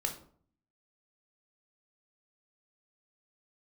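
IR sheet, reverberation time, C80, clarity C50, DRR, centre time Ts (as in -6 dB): 0.55 s, 14.0 dB, 10.0 dB, 2.0 dB, 16 ms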